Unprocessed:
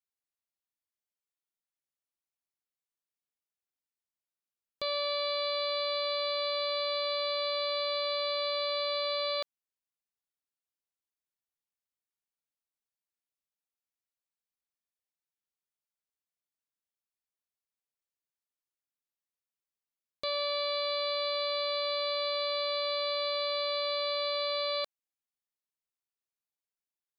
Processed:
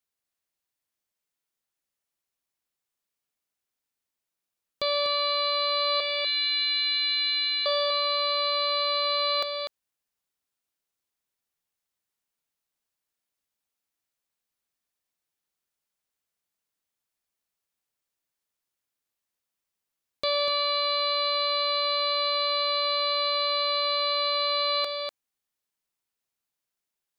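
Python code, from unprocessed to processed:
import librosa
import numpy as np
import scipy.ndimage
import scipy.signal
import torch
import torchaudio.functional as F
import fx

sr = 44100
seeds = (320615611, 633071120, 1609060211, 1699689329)

y = fx.ellip_bandpass(x, sr, low_hz=1700.0, high_hz=4000.0, order=3, stop_db=80, at=(6.0, 7.66))
y = fx.rider(y, sr, range_db=10, speed_s=0.5)
y = y + 10.0 ** (-6.5 / 20.0) * np.pad(y, (int(246 * sr / 1000.0), 0))[:len(y)]
y = F.gain(torch.from_numpy(y), 7.0).numpy()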